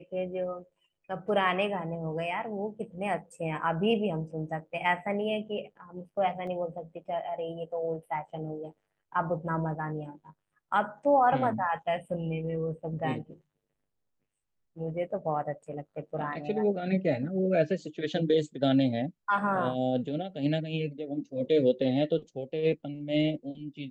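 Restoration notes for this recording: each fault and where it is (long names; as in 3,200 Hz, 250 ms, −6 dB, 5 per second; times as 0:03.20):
0:06.47: drop-out 3.4 ms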